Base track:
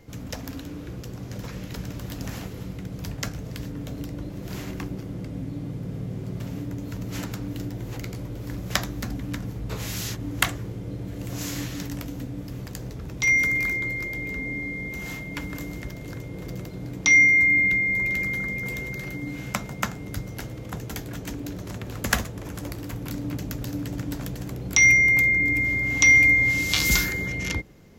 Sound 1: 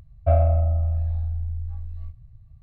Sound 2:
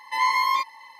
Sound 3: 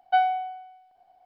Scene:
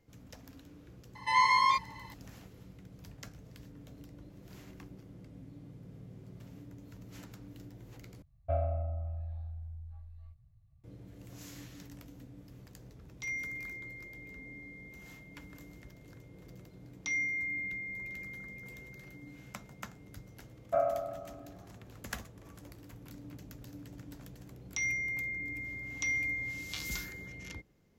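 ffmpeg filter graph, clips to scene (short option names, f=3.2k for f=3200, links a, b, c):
-filter_complex "[1:a]asplit=2[a][b];[0:a]volume=-17.5dB[c];[2:a]lowpass=f=9.4k:w=0.5412,lowpass=f=9.4k:w=1.3066[d];[a]lowshelf=f=63:g=-12[e];[b]highpass=f=340:w=0.5412,highpass=f=340:w=1.3066,equalizer=f=510:t=q:w=4:g=-5,equalizer=f=800:t=q:w=4:g=-6,equalizer=f=1.2k:t=q:w=4:g=7,lowpass=f=2.1k:w=0.5412,lowpass=f=2.1k:w=1.3066[f];[c]asplit=2[g][h];[g]atrim=end=8.224[i];[e]atrim=end=2.62,asetpts=PTS-STARTPTS,volume=-10.5dB[j];[h]atrim=start=10.836[k];[d]atrim=end=0.99,asetpts=PTS-STARTPTS,volume=-3.5dB,afade=t=in:d=0.004:c=hsin,afade=t=out:st=0.986:d=0.004:c=hsin,adelay=1150[l];[f]atrim=end=2.62,asetpts=PTS-STARTPTS,volume=-2dB,afade=t=in:d=0.004:c=hsin,afade=t=out:st=2.616:d=0.004:c=hsin,adelay=20460[m];[i][j]acrossfade=d=0.004:c1=hsin:c2=hsin[n];[n][k]acrossfade=d=0.004:c1=hsin:c2=hsin[o];[o][l][m]amix=inputs=3:normalize=0"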